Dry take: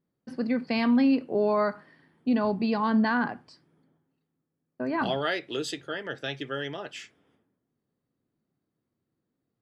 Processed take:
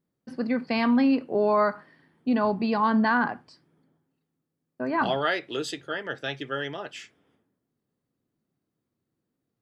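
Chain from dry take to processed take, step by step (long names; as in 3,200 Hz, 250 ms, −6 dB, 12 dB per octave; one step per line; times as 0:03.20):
dynamic equaliser 1,100 Hz, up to +5 dB, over −39 dBFS, Q 0.85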